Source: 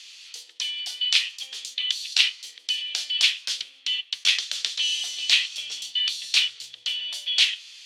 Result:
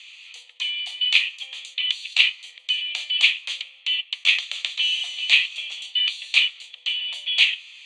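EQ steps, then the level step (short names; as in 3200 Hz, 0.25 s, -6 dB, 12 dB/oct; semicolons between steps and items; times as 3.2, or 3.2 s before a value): speaker cabinet 470–7900 Hz, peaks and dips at 500 Hz +9 dB, 1400 Hz +9 dB, 2400 Hz +6 dB, 6000 Hz +3 dB; fixed phaser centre 1500 Hz, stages 6; +2.0 dB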